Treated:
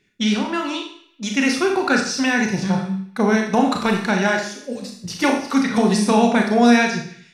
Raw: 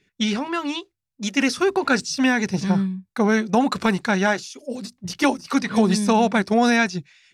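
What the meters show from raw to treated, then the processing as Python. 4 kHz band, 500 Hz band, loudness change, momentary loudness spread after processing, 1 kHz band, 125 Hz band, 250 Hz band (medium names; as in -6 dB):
+2.0 dB, +2.0 dB, +2.0 dB, 13 LU, +2.0 dB, +1.0 dB, +2.5 dB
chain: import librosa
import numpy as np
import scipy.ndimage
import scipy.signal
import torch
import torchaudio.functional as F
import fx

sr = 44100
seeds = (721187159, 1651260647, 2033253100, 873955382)

p1 = fx.wow_flutter(x, sr, seeds[0], rate_hz=2.1, depth_cents=18.0)
p2 = p1 + fx.echo_banded(p1, sr, ms=141, feedback_pct=45, hz=2500.0, wet_db=-21, dry=0)
y = fx.rev_schroeder(p2, sr, rt60_s=0.55, comb_ms=26, drr_db=2.0)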